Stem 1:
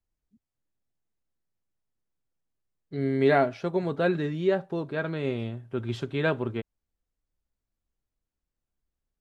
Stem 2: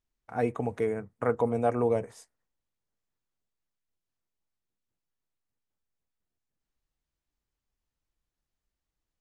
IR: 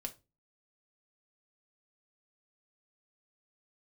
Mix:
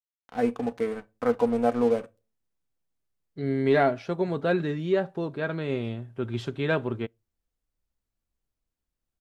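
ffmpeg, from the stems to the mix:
-filter_complex "[0:a]acontrast=50,adelay=450,volume=-6dB,asplit=2[a][b];[b]volume=-22.5dB[c];[1:a]aecho=1:1:3.9:0.55,aeval=exprs='sgn(val(0))*max(abs(val(0))-0.01,0)':c=same,volume=-3.5dB,asplit=2[d][e];[e]volume=-3dB[f];[2:a]atrim=start_sample=2205[g];[c][f]amix=inputs=2:normalize=0[h];[h][g]afir=irnorm=-1:irlink=0[i];[a][d][i]amix=inputs=3:normalize=0"

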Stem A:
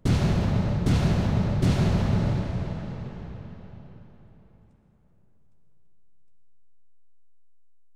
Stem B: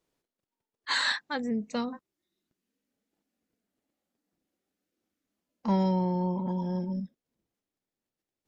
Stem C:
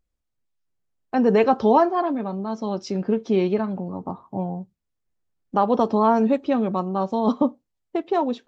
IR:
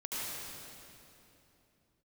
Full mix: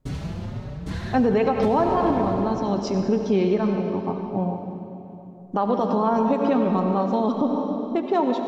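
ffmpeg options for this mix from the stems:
-filter_complex "[0:a]asplit=2[a][b];[b]adelay=5,afreqshift=1.6[c];[a][c]amix=inputs=2:normalize=1,volume=-5.5dB[d];[1:a]lowpass=3k,dynaudnorm=f=260:g=11:m=11.5dB,volume=-16.5dB[e];[2:a]volume=-0.5dB,asplit=2[f][g];[g]volume=-6.5dB[h];[3:a]atrim=start_sample=2205[i];[h][i]afir=irnorm=-1:irlink=0[j];[d][e][f][j]amix=inputs=4:normalize=0,alimiter=limit=-11.5dB:level=0:latency=1:release=111"

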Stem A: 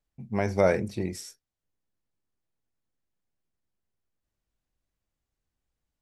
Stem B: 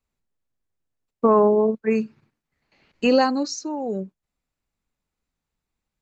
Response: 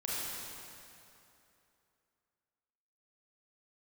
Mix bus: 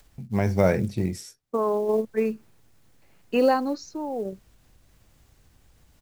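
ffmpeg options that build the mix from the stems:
-filter_complex "[0:a]adynamicequalizer=threshold=0.0141:dfrequency=160:dqfactor=1.1:tfrequency=160:tqfactor=1.1:attack=5:release=100:ratio=0.375:range=2.5:mode=boostabove:tftype=bell,acompressor=mode=upward:threshold=-38dB:ratio=2.5,volume=0dB,asplit=2[a][b];[1:a]highpass=430,aemphasis=mode=reproduction:type=riaa,adelay=300,volume=-2.5dB[c];[b]apad=whole_len=278536[d];[c][d]sidechaingate=range=-6dB:threshold=-59dB:ratio=16:detection=peak[e];[a][e]amix=inputs=2:normalize=0,equalizer=f=100:t=o:w=1.5:g=5,acrusher=bits=8:mode=log:mix=0:aa=0.000001"

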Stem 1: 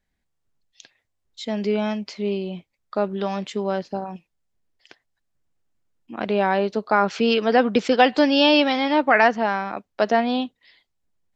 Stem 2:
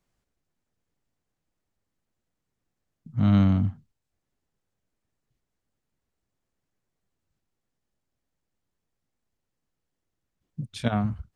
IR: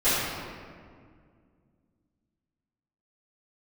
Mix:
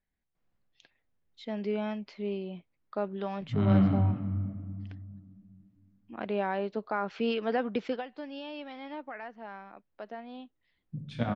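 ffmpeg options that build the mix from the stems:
-filter_complex "[0:a]alimiter=limit=-10dB:level=0:latency=1:release=283,volume=-9dB,afade=t=out:st=7.85:d=0.21:silence=0.281838[a];[1:a]adelay=350,volume=-6.5dB,asplit=2[b][c];[c]volume=-17.5dB[d];[2:a]atrim=start_sample=2205[e];[d][e]afir=irnorm=-1:irlink=0[f];[a][b][f]amix=inputs=3:normalize=0,lowpass=3.2k"

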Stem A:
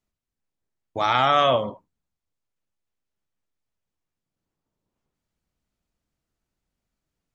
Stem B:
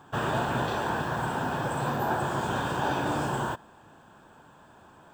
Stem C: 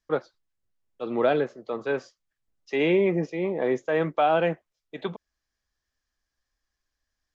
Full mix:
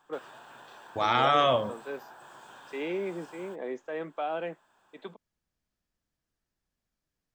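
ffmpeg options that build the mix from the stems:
-filter_complex "[0:a]volume=-4.5dB[a];[1:a]highpass=f=1.2k:p=1,acompressor=threshold=-39dB:ratio=6,volume=-8.5dB[b];[2:a]highpass=f=190:w=0.5412,highpass=f=190:w=1.3066,volume=-11dB[c];[a][b][c]amix=inputs=3:normalize=0"

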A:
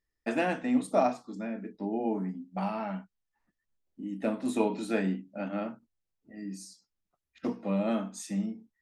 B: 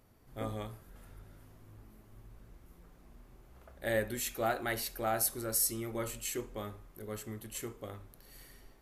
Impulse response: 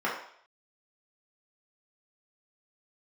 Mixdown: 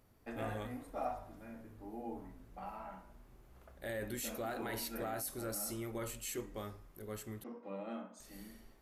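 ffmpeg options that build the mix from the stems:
-filter_complex "[0:a]volume=-17dB,asplit=2[a][b];[b]volume=-9.5dB[c];[1:a]asoftclip=type=hard:threshold=-20.5dB,alimiter=level_in=5dB:limit=-24dB:level=0:latency=1:release=12,volume=-5dB,volume=-3dB,asplit=3[d][e][f];[d]atrim=end=7.44,asetpts=PTS-STARTPTS,afade=t=out:st=7.436:d=0.004:c=hsin[g];[e]atrim=start=7.44:end=8.2,asetpts=PTS-STARTPTS,volume=0[h];[f]atrim=start=8.2,asetpts=PTS-STARTPTS,afade=t=in:d=0.004:c=hsin[i];[g][h][i]concat=n=3:v=0:a=1,asplit=2[j][k];[k]apad=whole_len=388910[l];[a][l]sidechaincompress=threshold=-57dB:ratio=8:attack=16:release=253[m];[2:a]atrim=start_sample=2205[n];[c][n]afir=irnorm=-1:irlink=0[o];[m][j][o]amix=inputs=3:normalize=0"

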